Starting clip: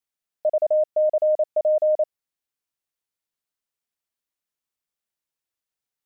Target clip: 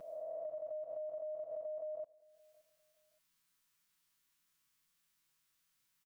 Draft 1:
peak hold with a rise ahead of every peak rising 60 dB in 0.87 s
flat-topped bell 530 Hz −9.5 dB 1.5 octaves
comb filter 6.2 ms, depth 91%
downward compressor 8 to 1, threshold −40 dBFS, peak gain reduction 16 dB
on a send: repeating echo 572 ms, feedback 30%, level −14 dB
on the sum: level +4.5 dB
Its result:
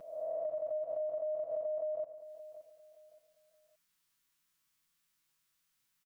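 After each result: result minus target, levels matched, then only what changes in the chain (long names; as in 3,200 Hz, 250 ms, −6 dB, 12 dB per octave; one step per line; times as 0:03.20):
echo-to-direct +11 dB; downward compressor: peak gain reduction −6 dB
change: repeating echo 572 ms, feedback 30%, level −25 dB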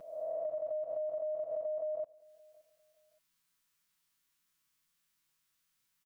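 downward compressor: peak gain reduction −6 dB
change: downward compressor 8 to 1, threshold −47 dBFS, peak gain reduction 22.5 dB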